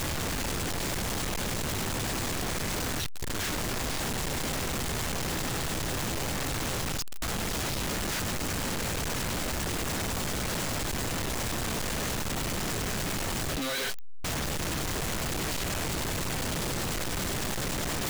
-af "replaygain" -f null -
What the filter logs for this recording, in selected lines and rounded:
track_gain = +16.0 dB
track_peak = 0.020